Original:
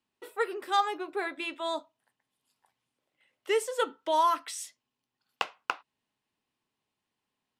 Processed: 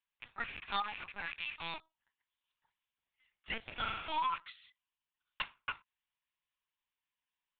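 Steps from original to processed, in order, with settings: rattling part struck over -54 dBFS, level -24 dBFS; HPF 1200 Hz 12 dB/oct; 3.7–4.19 flutter echo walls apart 7.2 m, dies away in 1 s; LPC vocoder at 8 kHz pitch kept; gain -5 dB

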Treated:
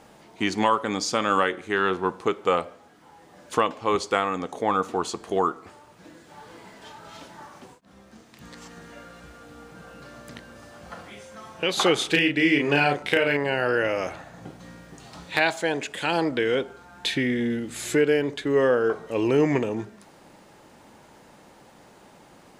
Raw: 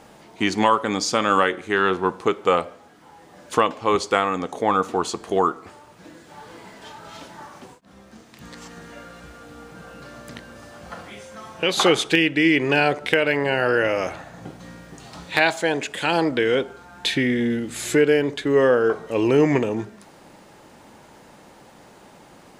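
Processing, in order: 11.98–13.37 doubler 35 ms -4 dB; gain -3.5 dB

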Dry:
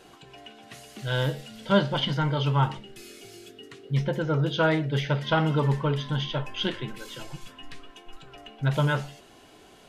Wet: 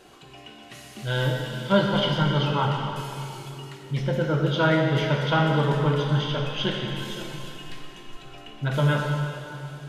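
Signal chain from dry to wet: plate-style reverb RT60 2.9 s, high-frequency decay 0.95×, DRR 0 dB

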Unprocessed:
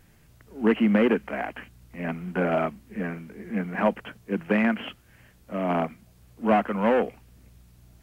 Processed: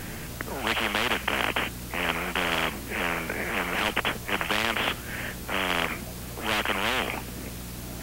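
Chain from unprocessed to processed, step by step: spectral compressor 10:1

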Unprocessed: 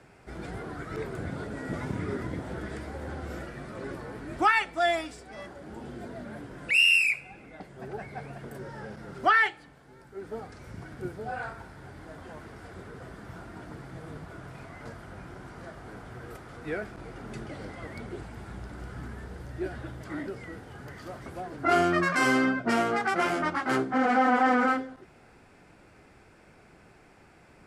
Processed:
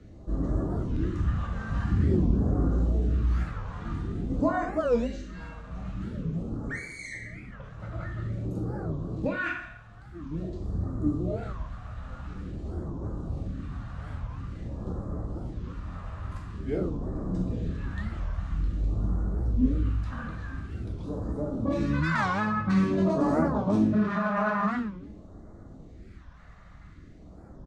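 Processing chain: pitch shift -3.5 st; limiter -20 dBFS, peak gain reduction 8.5 dB; low shelf 120 Hz -12 dB; plate-style reverb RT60 0.66 s, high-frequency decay 0.95×, DRR -0.5 dB; phaser stages 2, 0.48 Hz, lowest notch 320–2500 Hz; RIAA curve playback; record warp 45 rpm, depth 250 cents; gain +2 dB

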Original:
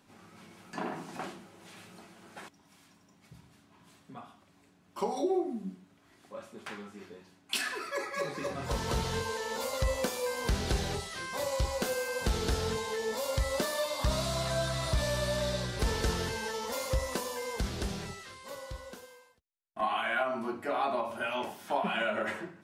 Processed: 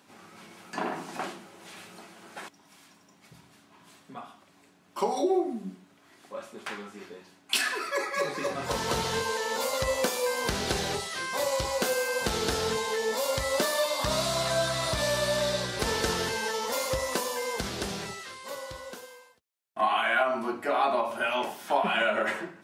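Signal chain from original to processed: HPF 290 Hz 6 dB/oct; gain +6 dB

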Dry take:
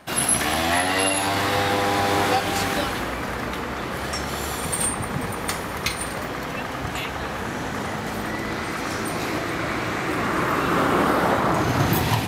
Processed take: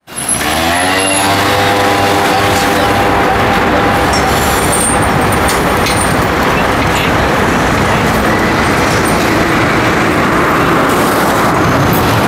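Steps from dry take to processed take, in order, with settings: opening faded in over 1.37 s; 10.89–11.52 tone controls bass 0 dB, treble +9 dB; dark delay 0.957 s, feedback 62%, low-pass 2400 Hz, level -3 dB; maximiser +21 dB; gain -1 dB

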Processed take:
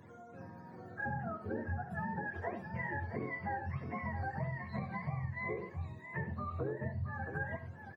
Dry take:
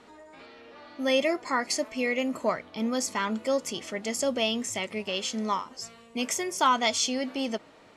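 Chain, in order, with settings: spectrum mirrored in octaves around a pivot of 660 Hz; compressor, threshold -34 dBFS, peak gain reduction 16.5 dB; resonator 540 Hz, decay 0.53 s, mix 70%; tapped delay 69/98/672 ms -12.5/-13.5/-8.5 dB; gain +7.5 dB

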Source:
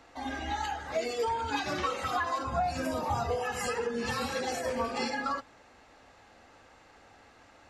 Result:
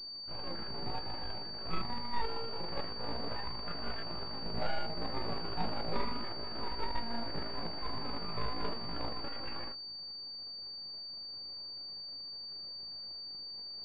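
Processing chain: median filter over 41 samples; dynamic EQ 230 Hz, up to -7 dB, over -52 dBFS, Q 2.1; full-wave rectifier; granular stretch 1.8×, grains 79 ms; pulse-width modulation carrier 4600 Hz; gain +3.5 dB

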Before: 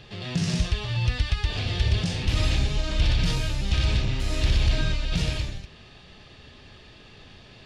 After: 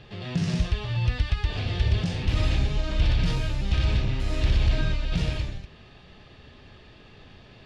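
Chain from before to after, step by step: high shelf 4000 Hz -10.5 dB

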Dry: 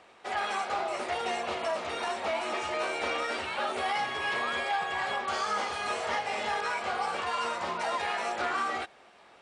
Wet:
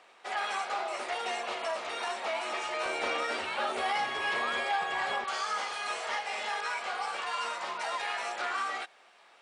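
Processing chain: HPF 670 Hz 6 dB/oct, from 2.86 s 210 Hz, from 5.24 s 1000 Hz

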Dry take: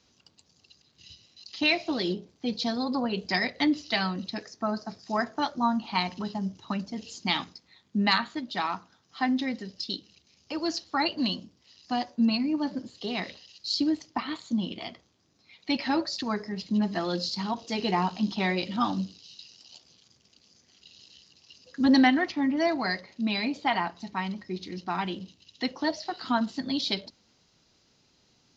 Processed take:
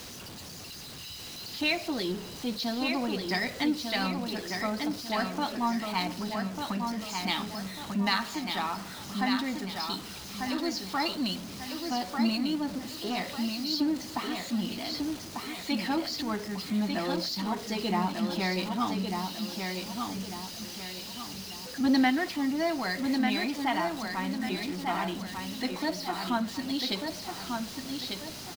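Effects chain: zero-crossing step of -33.5 dBFS; on a send: feedback echo 1.195 s, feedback 40%, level -5 dB; on the sum: gain -4.5 dB

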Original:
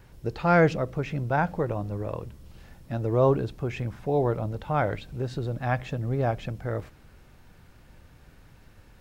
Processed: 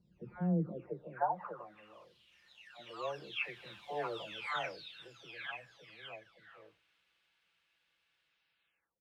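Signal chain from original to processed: spectral delay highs early, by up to 0.726 s; Doppler pass-by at 4.01, 12 m/s, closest 6.8 m; band-pass sweep 200 Hz -> 3000 Hz, 0.55–1.97; gain +11 dB

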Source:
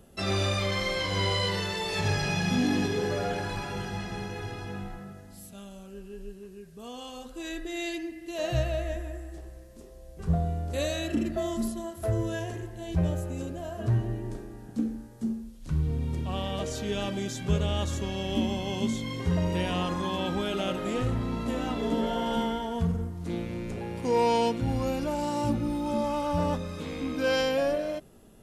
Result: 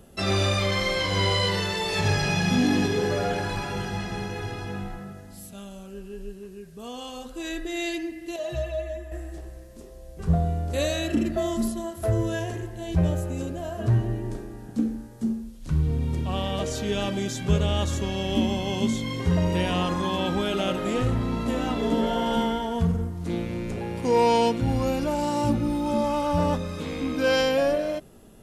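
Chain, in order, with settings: 8.36–9.12 metallic resonator 73 Hz, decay 0.26 s, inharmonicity 0.03; gain +4 dB

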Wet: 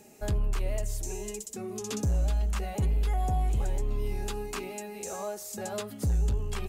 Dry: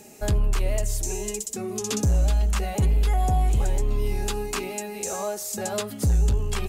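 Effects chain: bell 7600 Hz -3 dB 2.6 oct; gain -6 dB

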